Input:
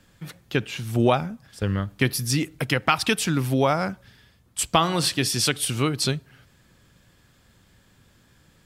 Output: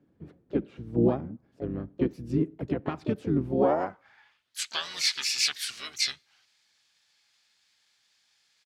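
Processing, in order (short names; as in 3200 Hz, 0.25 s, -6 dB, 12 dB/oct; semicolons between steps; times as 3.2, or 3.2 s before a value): band-pass sweep 310 Hz -> 4600 Hz, 3.45–4.62; harmoniser -12 st -6 dB, -3 st -10 dB, +5 st -8 dB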